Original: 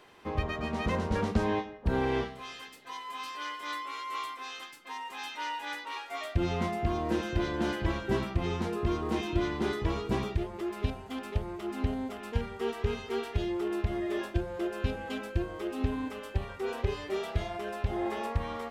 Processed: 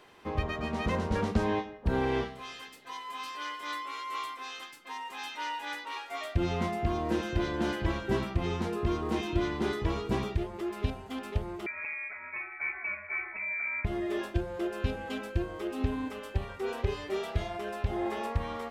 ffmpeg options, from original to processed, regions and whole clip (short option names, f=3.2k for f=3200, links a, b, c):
-filter_complex "[0:a]asettb=1/sr,asplit=3[a][b][c];[a]atrim=end=11.664[d];[b]atrim=start=11.66:end=13.85,asetpts=PTS-STARTPTS,afade=t=in:d=0.004:c=qsin,afade=t=out:st=2.186:d=0.004:c=qsin,highpass=310,asoftclip=type=hard:threshold=-27.5dB,lowpass=f=2.3k:t=q:w=0.5098,lowpass=f=2.3k:t=q:w=0.6013,lowpass=f=2.3k:t=q:w=0.9,lowpass=f=2.3k:t=q:w=2.563,afreqshift=-2700[e];[c]atrim=start=13.846[f];[d][e]acrossfade=d=0.004:c1=hsin:c2=qsin[g];[g][f]acrossfade=d=0.004:c1=qsin:c2=hsin"